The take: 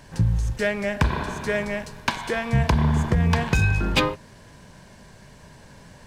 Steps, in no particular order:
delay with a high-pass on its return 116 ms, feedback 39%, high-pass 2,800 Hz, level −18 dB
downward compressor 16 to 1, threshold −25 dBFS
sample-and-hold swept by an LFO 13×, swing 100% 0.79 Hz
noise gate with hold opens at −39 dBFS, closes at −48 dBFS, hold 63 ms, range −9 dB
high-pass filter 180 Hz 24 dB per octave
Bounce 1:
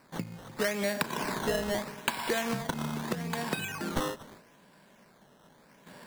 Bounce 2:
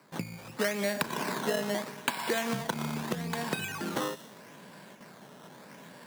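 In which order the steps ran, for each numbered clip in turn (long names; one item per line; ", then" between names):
delay with a high-pass on its return, then downward compressor, then high-pass filter, then sample-and-hold swept by an LFO, then noise gate with hold
sample-and-hold swept by an LFO, then delay with a high-pass on its return, then downward compressor, then high-pass filter, then noise gate with hold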